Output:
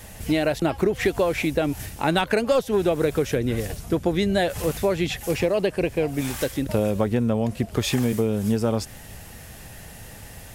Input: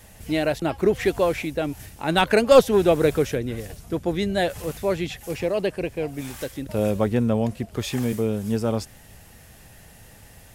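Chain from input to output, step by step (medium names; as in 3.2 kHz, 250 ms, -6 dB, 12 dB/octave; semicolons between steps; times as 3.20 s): compression 10:1, threshold -24 dBFS, peak gain reduction 16 dB; trim +6.5 dB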